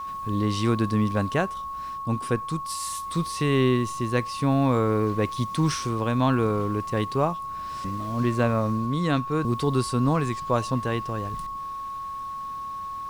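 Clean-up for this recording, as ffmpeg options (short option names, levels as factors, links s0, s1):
-af "bandreject=f=1100:w=30"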